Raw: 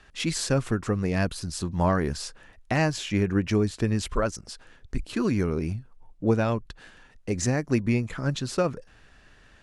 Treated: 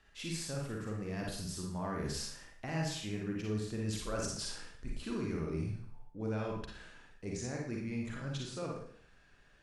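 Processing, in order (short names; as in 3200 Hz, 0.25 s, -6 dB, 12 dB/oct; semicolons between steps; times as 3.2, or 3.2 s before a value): Doppler pass-by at 4.41, 10 m/s, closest 11 m; reverse; compressor 6:1, threshold -38 dBFS, peak gain reduction 17 dB; reverse; Schroeder reverb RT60 0.57 s, DRR -1.5 dB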